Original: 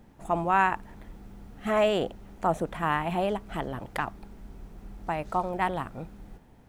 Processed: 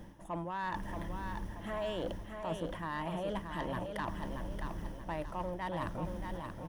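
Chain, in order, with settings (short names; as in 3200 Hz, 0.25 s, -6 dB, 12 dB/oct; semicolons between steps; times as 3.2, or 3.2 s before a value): ripple EQ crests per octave 1.2, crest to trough 8 dB; reverse; compressor 12:1, threshold -38 dBFS, peak gain reduction 21.5 dB; reverse; soft clip -34.5 dBFS, distortion -17 dB; feedback echo 0.629 s, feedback 40%, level -6 dB; gain +5 dB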